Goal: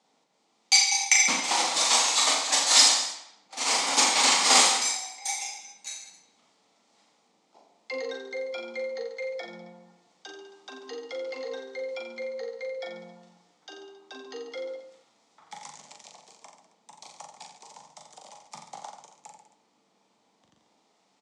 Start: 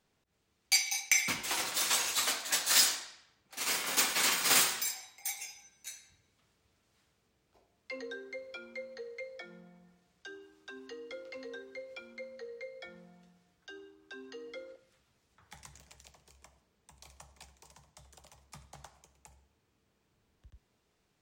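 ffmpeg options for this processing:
-af "highpass=f=220:w=0.5412,highpass=f=220:w=1.3066,equalizer=f=380:t=q:w=4:g=-7,equalizer=f=830:t=q:w=4:g=7,equalizer=f=1600:t=q:w=4:g=-10,equalizer=f=2700:t=q:w=4:g=-5,lowpass=f=8000:w=0.5412,lowpass=f=8000:w=1.3066,aecho=1:1:40|86|138.9|199.7|269.7:0.631|0.398|0.251|0.158|0.1,volume=2.51"

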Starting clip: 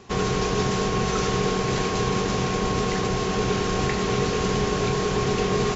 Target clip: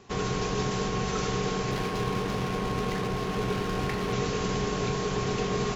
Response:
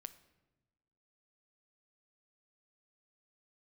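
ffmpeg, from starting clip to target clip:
-filter_complex "[0:a]asettb=1/sr,asplit=3[s0][s1][s2];[s0]atrim=end=1.714[s3];[s1]atrim=start=1.71:end=4.13,asetpts=PTS-STARTPTS,afade=t=in:d=0.004:c=qsin,afade=t=out:st=2.416:d=0.004:c=qsin,adynamicsmooth=sensitivity=6.5:basefreq=1700[s4];[s2]atrim=start=4.126[s5];[s3][s4]acrossfade=d=0.004:c1=hsin:c2=qsin[s6];[s6][s5]acrossfade=d=0.004:c1=qsin:c2=hsin[s7];[1:a]atrim=start_sample=2205[s8];[s7][s8]afir=irnorm=-1:irlink=0"

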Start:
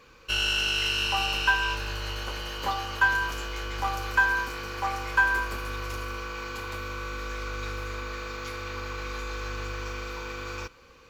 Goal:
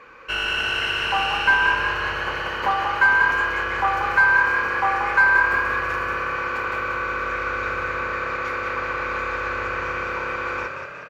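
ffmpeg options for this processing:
-filter_complex "[0:a]asplit=2[s0][s1];[s1]highpass=f=720:p=1,volume=7.08,asoftclip=type=tanh:threshold=0.335[s2];[s0][s2]amix=inputs=2:normalize=0,lowpass=f=2500:p=1,volume=0.501,highshelf=f=2700:t=q:w=1.5:g=-8.5,asplit=9[s3][s4][s5][s6][s7][s8][s9][s10][s11];[s4]adelay=184,afreqshift=34,volume=0.501[s12];[s5]adelay=368,afreqshift=68,volume=0.292[s13];[s6]adelay=552,afreqshift=102,volume=0.168[s14];[s7]adelay=736,afreqshift=136,volume=0.0977[s15];[s8]adelay=920,afreqshift=170,volume=0.0569[s16];[s9]adelay=1104,afreqshift=204,volume=0.0327[s17];[s10]adelay=1288,afreqshift=238,volume=0.0191[s18];[s11]adelay=1472,afreqshift=272,volume=0.0111[s19];[s3][s12][s13][s14][s15][s16][s17][s18][s19]amix=inputs=9:normalize=0"

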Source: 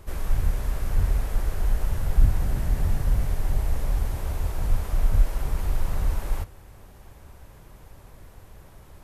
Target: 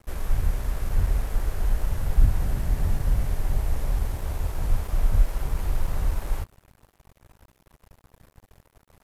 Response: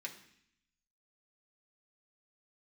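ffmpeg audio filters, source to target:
-af "aeval=exprs='sgn(val(0))*max(abs(val(0))-0.00596,0)':c=same"

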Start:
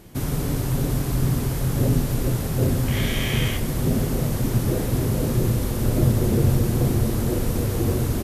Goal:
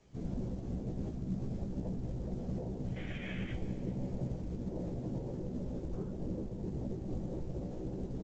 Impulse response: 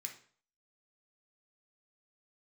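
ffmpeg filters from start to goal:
-filter_complex "[0:a]bandreject=f=60:t=h:w=6,bandreject=f=120:t=h:w=6,bandreject=f=180:t=h:w=6,bandreject=f=240:t=h:w=6,bandreject=f=300:t=h:w=6,bandreject=f=360:t=h:w=6,bandreject=f=420:t=h:w=6,bandreject=f=480:t=h:w=6,afwtdn=0.0355,lowshelf=f=88:g=3,acompressor=threshold=0.0794:ratio=16,alimiter=level_in=1.68:limit=0.0631:level=0:latency=1:release=156,volume=0.596,afftfilt=real='hypot(re,im)*cos(PI*b)':imag='0':win_size=1024:overlap=0.75,flanger=delay=9:depth=9.5:regen=-81:speed=0.42:shape=sinusoidal,afftfilt=real='hypot(re,im)*cos(2*PI*random(0))':imag='hypot(re,im)*sin(2*PI*random(1))':win_size=512:overlap=0.75,asplit=2[s0][s1];[s1]adelay=16,volume=0.562[s2];[s0][s2]amix=inputs=2:normalize=0,aecho=1:1:394|788|1182:0.112|0.0393|0.0137,volume=3.55" -ar 16000 -c:a pcm_mulaw

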